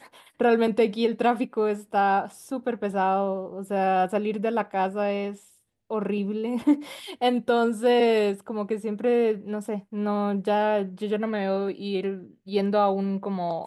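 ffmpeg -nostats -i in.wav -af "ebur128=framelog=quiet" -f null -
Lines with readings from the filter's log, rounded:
Integrated loudness:
  I:         -25.4 LUFS
  Threshold: -35.6 LUFS
Loudness range:
  LRA:         3.0 LU
  Threshold: -45.7 LUFS
  LRA low:   -27.3 LUFS
  LRA high:  -24.3 LUFS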